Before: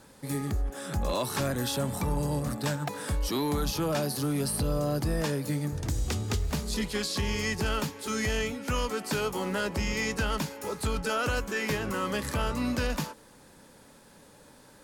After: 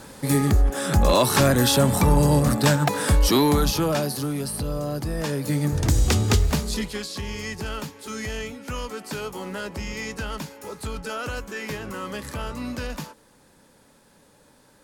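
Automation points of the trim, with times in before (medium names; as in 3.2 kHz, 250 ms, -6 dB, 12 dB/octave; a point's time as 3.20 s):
3.32 s +11.5 dB
4.43 s +0.5 dB
5.13 s +0.5 dB
5.82 s +10.5 dB
6.39 s +10.5 dB
7.07 s -2 dB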